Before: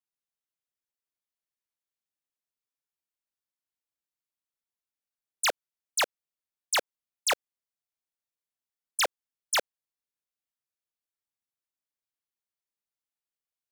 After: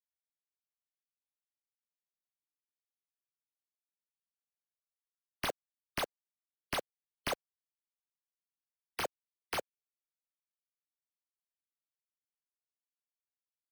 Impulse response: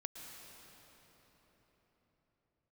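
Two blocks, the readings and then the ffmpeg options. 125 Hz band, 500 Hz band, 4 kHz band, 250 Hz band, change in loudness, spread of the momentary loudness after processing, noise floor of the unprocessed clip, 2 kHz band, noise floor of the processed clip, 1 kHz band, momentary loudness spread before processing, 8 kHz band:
can't be measured, −5.5 dB, −11.5 dB, +4.5 dB, −10.0 dB, 3 LU, below −85 dBFS, −10.0 dB, below −85 dBFS, −8.0 dB, 4 LU, −16.0 dB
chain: -af "equalizer=frequency=2400:width=0.35:gain=-13.5,afftfilt=real='re*gte(hypot(re,im),0.00398)':imag='im*gte(hypot(re,im),0.00398)':win_size=1024:overlap=0.75,acrusher=samples=6:mix=1:aa=0.000001,volume=-1.5dB"

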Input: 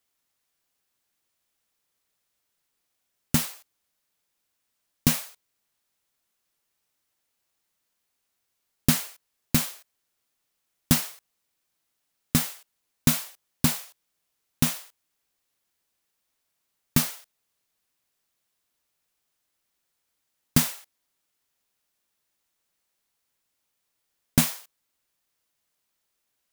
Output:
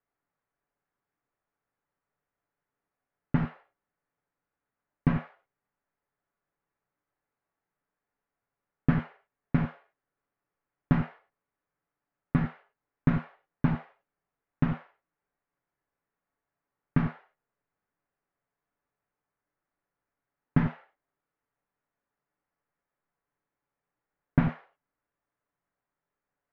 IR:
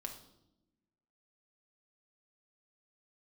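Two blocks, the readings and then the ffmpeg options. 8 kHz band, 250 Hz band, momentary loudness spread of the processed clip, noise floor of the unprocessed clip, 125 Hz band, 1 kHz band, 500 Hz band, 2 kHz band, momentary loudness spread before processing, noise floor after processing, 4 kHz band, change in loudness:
below −40 dB, −0.5 dB, 8 LU, −79 dBFS, +1.5 dB, −0.5 dB, −0.5 dB, −5.0 dB, 14 LU, below −85 dBFS, below −20 dB, −5.0 dB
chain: -filter_complex "[0:a]lowpass=frequency=1800:width=0.5412,lowpass=frequency=1800:width=1.3066[link_01];[1:a]atrim=start_sample=2205,atrim=end_sample=3528,asetrate=30870,aresample=44100[link_02];[link_01][link_02]afir=irnorm=-1:irlink=0"

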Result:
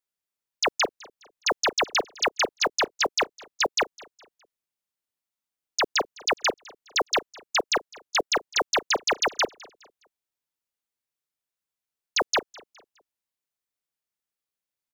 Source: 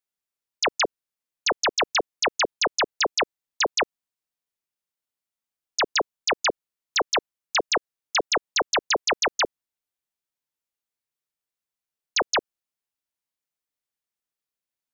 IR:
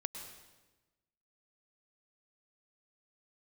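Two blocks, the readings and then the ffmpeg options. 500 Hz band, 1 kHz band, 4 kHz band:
−1.0 dB, −1.0 dB, −1.0 dB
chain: -af "aecho=1:1:207|414|621:0.0708|0.0269|0.0102,acrusher=bits=8:mode=log:mix=0:aa=0.000001,volume=-1dB"

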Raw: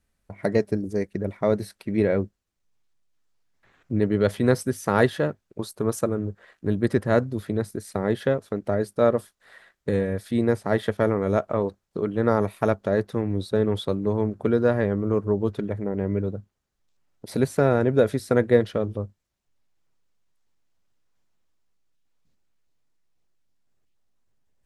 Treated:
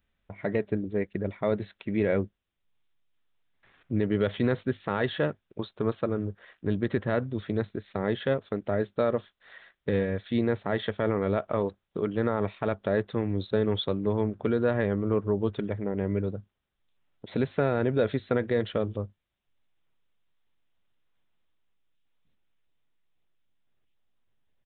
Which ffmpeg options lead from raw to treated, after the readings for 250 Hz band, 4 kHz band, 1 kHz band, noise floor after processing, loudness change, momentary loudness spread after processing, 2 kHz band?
−4.0 dB, +0.5 dB, −5.0 dB, −80 dBFS, −4.5 dB, 7 LU, −3.5 dB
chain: -af "aresample=8000,aresample=44100,crystalizer=i=3.5:c=0,alimiter=limit=-11.5dB:level=0:latency=1:release=56,volume=-3dB"

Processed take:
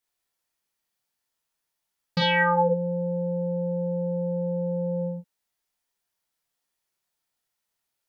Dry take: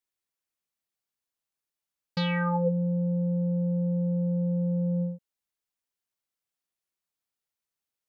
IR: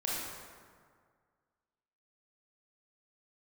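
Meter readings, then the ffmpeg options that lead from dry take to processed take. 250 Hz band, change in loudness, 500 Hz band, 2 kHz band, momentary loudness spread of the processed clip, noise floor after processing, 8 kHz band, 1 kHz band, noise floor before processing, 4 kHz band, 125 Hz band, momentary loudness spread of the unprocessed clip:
−3.0 dB, +2.0 dB, +7.0 dB, +10.5 dB, 9 LU, −82 dBFS, can't be measured, +9.5 dB, below −85 dBFS, +9.5 dB, −3.0 dB, 5 LU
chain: -filter_complex "[1:a]atrim=start_sample=2205,atrim=end_sample=3087,asetrate=52920,aresample=44100[link_01];[0:a][link_01]afir=irnorm=-1:irlink=0,volume=7.5dB"

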